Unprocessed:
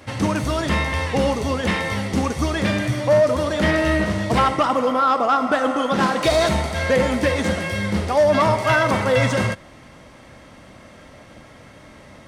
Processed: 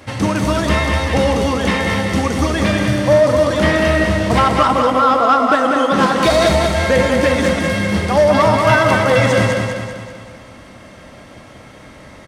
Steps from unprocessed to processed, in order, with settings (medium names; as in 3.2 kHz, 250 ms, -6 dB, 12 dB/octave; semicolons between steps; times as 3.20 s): feedback delay 194 ms, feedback 51%, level -4.5 dB; trim +3.5 dB